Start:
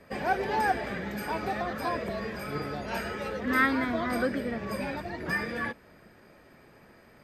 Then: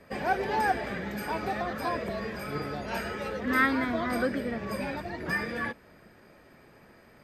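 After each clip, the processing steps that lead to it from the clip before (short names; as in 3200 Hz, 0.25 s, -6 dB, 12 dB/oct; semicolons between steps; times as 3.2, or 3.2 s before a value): nothing audible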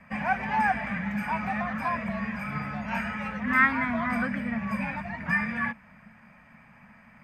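EQ curve 110 Hz 0 dB, 220 Hz +8 dB, 360 Hz -23 dB, 640 Hz -3 dB, 970 Hz +5 dB, 1400 Hz +2 dB, 2400 Hz +7 dB, 3900 Hz -12 dB, 6500 Hz -6 dB, 11000 Hz -12 dB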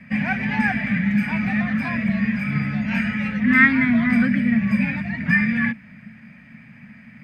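graphic EQ 125/250/1000/2000/4000 Hz +11/+11/-9/+9/+8 dB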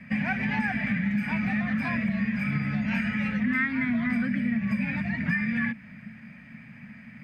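compressor 6:1, threshold -22 dBFS, peak gain reduction 12.5 dB; gain -1.5 dB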